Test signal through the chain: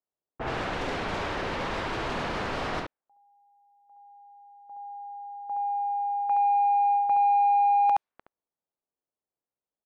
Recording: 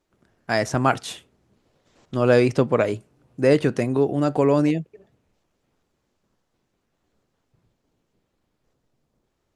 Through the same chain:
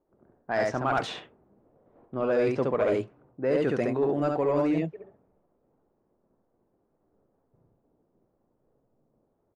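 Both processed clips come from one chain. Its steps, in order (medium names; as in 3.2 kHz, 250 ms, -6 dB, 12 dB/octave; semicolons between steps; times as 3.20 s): delay 70 ms -3.5 dB; reverse; compression 6:1, threshold -24 dBFS; reverse; level-controlled noise filter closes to 670 Hz, open at -22 dBFS; overdrive pedal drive 14 dB, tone 1 kHz, clips at -11.5 dBFS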